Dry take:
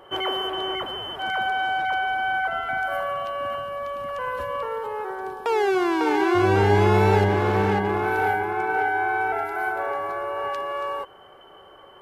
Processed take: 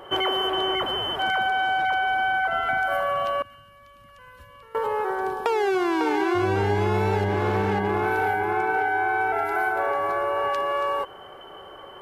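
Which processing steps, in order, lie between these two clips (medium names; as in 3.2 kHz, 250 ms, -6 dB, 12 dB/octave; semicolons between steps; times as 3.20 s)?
3.42–4.75 s: amplifier tone stack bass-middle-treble 6-0-2; compression 5:1, threshold -26 dBFS, peak gain reduction 11.5 dB; trim +5.5 dB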